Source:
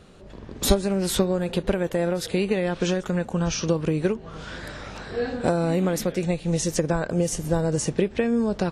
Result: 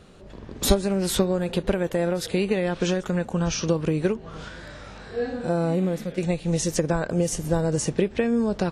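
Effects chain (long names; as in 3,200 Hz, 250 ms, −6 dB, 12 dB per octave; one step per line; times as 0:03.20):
0:04.48–0:06.18: harmonic and percussive parts rebalanced percussive −16 dB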